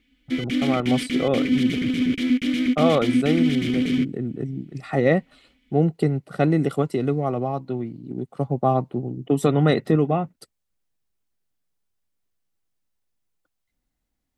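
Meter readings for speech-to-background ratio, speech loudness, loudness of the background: -1.0 dB, -24.0 LUFS, -23.0 LUFS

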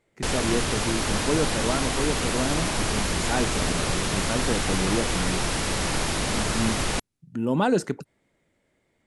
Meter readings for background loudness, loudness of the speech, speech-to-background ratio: -26.0 LUFS, -29.5 LUFS, -3.5 dB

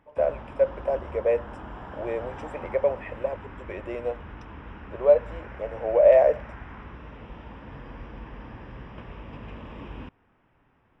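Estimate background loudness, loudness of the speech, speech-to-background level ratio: -42.0 LUFS, -24.5 LUFS, 17.5 dB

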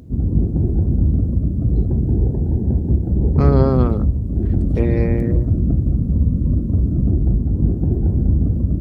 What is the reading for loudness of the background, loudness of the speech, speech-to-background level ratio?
-18.5 LUFS, -21.5 LUFS, -3.0 dB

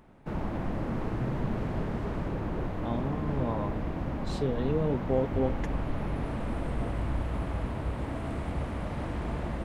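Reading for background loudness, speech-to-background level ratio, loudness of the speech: -34.0 LUFS, 2.0 dB, -32.0 LUFS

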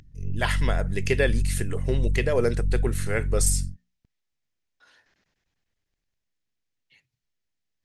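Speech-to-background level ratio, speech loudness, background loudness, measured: 2.0 dB, -27.5 LUFS, -29.5 LUFS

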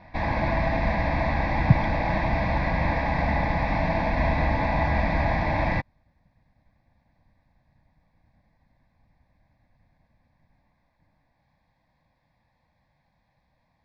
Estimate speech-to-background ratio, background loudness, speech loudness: 1.0 dB, -25.5 LUFS, -24.5 LUFS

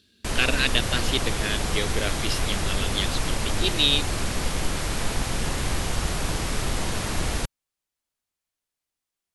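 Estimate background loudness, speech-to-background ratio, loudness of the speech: -28.0 LUFS, 2.0 dB, -26.0 LUFS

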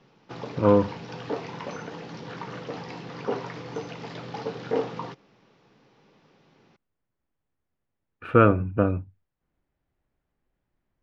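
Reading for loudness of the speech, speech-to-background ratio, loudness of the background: -22.0 LUFS, 13.0 dB, -35.0 LUFS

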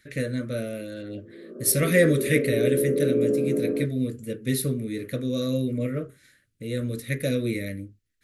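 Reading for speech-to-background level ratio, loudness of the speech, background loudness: -0.5 dB, -26.5 LUFS, -26.0 LUFS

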